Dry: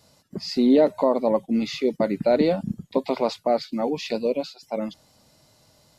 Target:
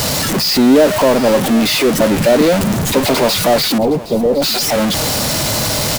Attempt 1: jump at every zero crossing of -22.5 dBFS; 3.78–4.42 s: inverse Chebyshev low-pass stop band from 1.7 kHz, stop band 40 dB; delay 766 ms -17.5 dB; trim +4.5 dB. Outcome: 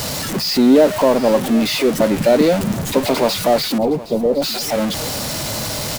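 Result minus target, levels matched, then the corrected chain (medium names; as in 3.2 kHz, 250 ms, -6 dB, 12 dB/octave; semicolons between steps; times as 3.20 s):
jump at every zero crossing: distortion -5 dB
jump at every zero crossing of -15.5 dBFS; 3.78–4.42 s: inverse Chebyshev low-pass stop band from 1.7 kHz, stop band 40 dB; delay 766 ms -17.5 dB; trim +4.5 dB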